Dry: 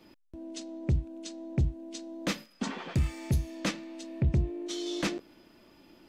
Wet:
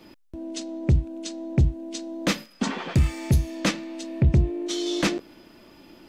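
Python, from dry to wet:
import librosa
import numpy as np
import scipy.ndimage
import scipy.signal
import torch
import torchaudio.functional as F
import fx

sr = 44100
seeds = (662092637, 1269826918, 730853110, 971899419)

y = F.gain(torch.from_numpy(x), 7.5).numpy()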